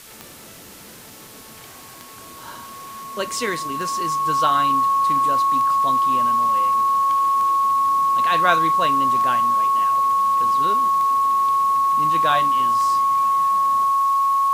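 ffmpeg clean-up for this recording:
-af "adeclick=t=4,bandreject=f=1.1k:w=30,afwtdn=0.0079"

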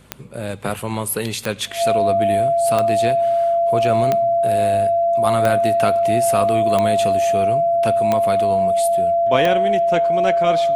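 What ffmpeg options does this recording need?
-af "adeclick=t=4,bandreject=f=50.6:t=h:w=4,bandreject=f=101.2:t=h:w=4,bandreject=f=151.8:t=h:w=4,bandreject=f=202.4:t=h:w=4,bandreject=f=253:t=h:w=4,bandreject=f=680:w=30"

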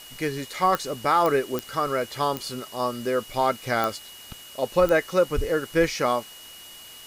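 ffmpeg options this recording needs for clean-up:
-af "adeclick=t=4,bandreject=f=2.9k:w=30,afwtdn=0.0056"

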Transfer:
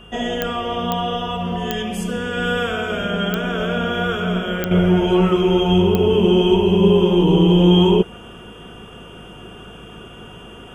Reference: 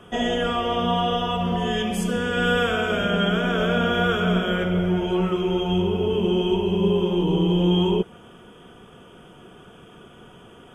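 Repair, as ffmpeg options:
-af "adeclick=t=4,bandreject=f=53.3:t=h:w=4,bandreject=f=106.6:t=h:w=4,bandreject=f=159.9:t=h:w=4,bandreject=f=213.2:t=h:w=4,bandreject=f=2.8k:w=30,asetnsamples=n=441:p=0,asendcmd='4.71 volume volume -7dB',volume=0dB"

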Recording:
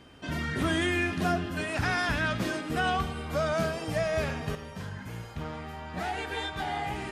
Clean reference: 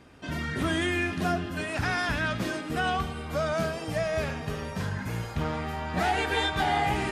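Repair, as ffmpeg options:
-af "bandreject=f=3.1k:w=30,asetnsamples=n=441:p=0,asendcmd='4.55 volume volume 7dB',volume=0dB"

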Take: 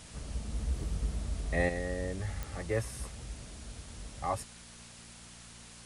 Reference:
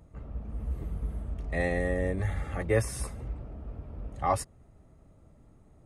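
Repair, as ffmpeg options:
-af "adeclick=t=4,bandreject=f=58.1:t=h:w=4,bandreject=f=116.2:t=h:w=4,bandreject=f=174.3:t=h:w=4,bandreject=f=232.4:t=h:w=4,afwtdn=0.0032,asetnsamples=n=441:p=0,asendcmd='1.69 volume volume 6.5dB',volume=0dB"

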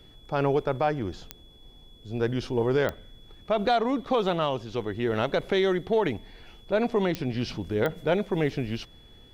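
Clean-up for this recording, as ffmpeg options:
-af "adeclick=t=4,bandreject=f=3.4k:w=30"

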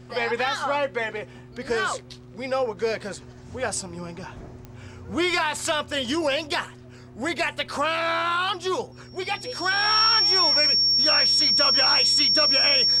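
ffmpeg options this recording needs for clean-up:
-af "adeclick=t=4,bandreject=f=123.3:t=h:w=4,bandreject=f=246.6:t=h:w=4,bandreject=f=369.9:t=h:w=4,bandreject=f=5.5k:w=30"

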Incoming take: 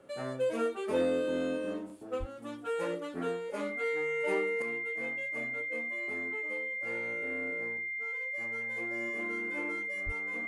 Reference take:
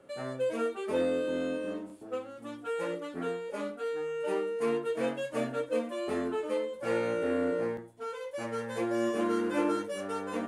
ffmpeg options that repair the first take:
-filter_complex "[0:a]bandreject=f=2.1k:w=30,asplit=3[a][b][c];[a]afade=t=out:st=2.19:d=0.02[d];[b]highpass=f=140:w=0.5412,highpass=f=140:w=1.3066,afade=t=in:st=2.19:d=0.02,afade=t=out:st=2.31:d=0.02[e];[c]afade=t=in:st=2.31:d=0.02[f];[d][e][f]amix=inputs=3:normalize=0,asplit=3[g][h][i];[g]afade=t=out:st=10.05:d=0.02[j];[h]highpass=f=140:w=0.5412,highpass=f=140:w=1.3066,afade=t=in:st=10.05:d=0.02,afade=t=out:st=10.17:d=0.02[k];[i]afade=t=in:st=10.17:d=0.02[l];[j][k][l]amix=inputs=3:normalize=0,asetnsamples=n=441:p=0,asendcmd='4.62 volume volume 11.5dB',volume=0dB"

